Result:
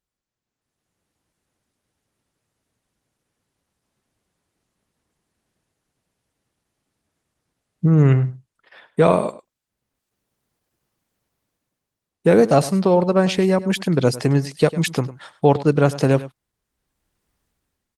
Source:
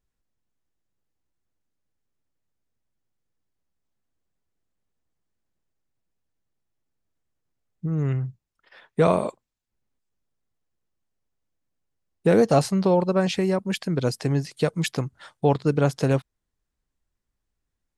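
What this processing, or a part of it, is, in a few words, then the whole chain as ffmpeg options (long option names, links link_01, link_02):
video call: -filter_complex "[0:a]asettb=1/sr,asplit=3[link_01][link_02][link_03];[link_01]atrim=end=7.924[link_04];[link_02]atrim=start=7.92:end=9.16,asetpts=PTS-STARTPTS,afade=type=in:duration=0.004:curve=qsin,afade=type=out:start_time=1.236:duration=0.004:curve=qsin,equalizer=frequency=5900:width_type=o:width=0.35:gain=-3[link_05];[link_03]atrim=start=9.156[link_06];[link_04][link_05]acrossfade=duration=0.004:curve1=hsin:curve2=qsin[link_07];[link_07][link_06]acrossfade=duration=0.004:curve1=qsin:curve2=hsin,highpass=frequency=100:poles=1,aecho=1:1:102:0.15,dynaudnorm=framelen=210:gausssize=7:maxgain=16dB,volume=-1dB" -ar 48000 -c:a libopus -b:a 24k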